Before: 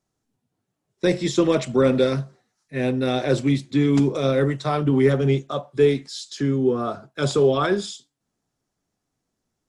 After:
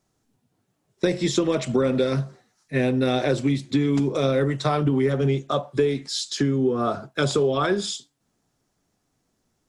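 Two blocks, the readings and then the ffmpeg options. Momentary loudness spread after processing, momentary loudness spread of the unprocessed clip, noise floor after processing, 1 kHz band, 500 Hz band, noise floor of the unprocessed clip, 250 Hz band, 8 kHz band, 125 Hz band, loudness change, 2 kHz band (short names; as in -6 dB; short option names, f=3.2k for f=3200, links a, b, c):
5 LU, 10 LU, -73 dBFS, 0.0 dB, -2.5 dB, -80 dBFS, -1.5 dB, +2.5 dB, -1.5 dB, -2.0 dB, -0.5 dB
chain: -af "acompressor=threshold=-25dB:ratio=6,volume=6.5dB"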